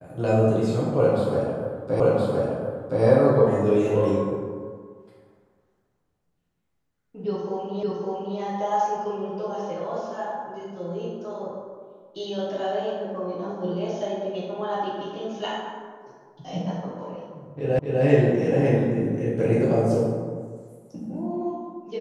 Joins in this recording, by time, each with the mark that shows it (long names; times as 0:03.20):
0:02.00: the same again, the last 1.02 s
0:07.83: the same again, the last 0.56 s
0:17.79: the same again, the last 0.25 s